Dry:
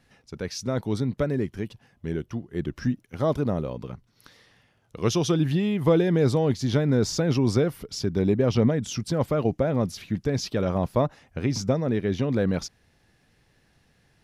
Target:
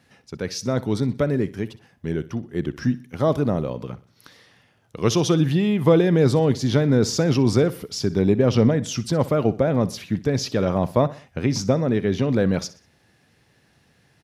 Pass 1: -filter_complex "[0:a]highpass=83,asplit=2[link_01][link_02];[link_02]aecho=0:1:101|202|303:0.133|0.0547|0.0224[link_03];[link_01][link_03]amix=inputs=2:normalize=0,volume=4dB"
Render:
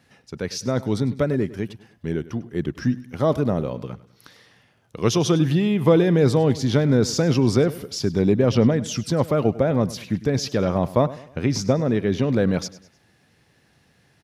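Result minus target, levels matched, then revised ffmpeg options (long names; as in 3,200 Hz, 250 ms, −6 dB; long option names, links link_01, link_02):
echo 39 ms late
-filter_complex "[0:a]highpass=83,asplit=2[link_01][link_02];[link_02]aecho=0:1:62|124|186:0.133|0.0547|0.0224[link_03];[link_01][link_03]amix=inputs=2:normalize=0,volume=4dB"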